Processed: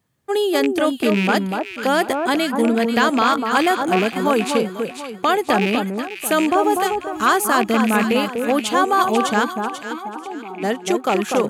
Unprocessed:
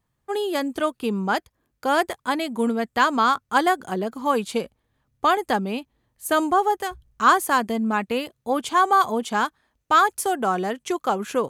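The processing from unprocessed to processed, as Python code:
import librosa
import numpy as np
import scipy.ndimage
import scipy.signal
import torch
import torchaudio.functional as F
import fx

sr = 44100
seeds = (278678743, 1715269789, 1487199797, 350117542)

p1 = fx.rattle_buzz(x, sr, strikes_db=-32.0, level_db=-19.0)
p2 = scipy.signal.sosfilt(scipy.signal.butter(2, 110.0, 'highpass', fs=sr, output='sos'), p1)
p3 = fx.peak_eq(p2, sr, hz=1000.0, db=-5.5, octaves=0.84)
p4 = fx.over_compress(p3, sr, threshold_db=-24.0, ratio=-1.0)
p5 = p3 + (p4 * librosa.db_to_amplitude(-3.0))
p6 = fx.vowel_filter(p5, sr, vowel='u', at=(9.43, 10.62), fade=0.02)
p7 = p6 + fx.echo_alternate(p6, sr, ms=245, hz=1300.0, feedback_pct=58, wet_db=-4, dry=0)
y = p7 * librosa.db_to_amplitude(1.5)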